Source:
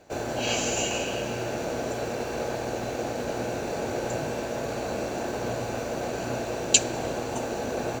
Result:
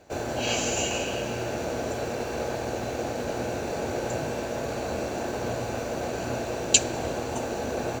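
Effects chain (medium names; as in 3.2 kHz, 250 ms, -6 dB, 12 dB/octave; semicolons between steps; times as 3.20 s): peaking EQ 78 Hz +8.5 dB 0.29 oct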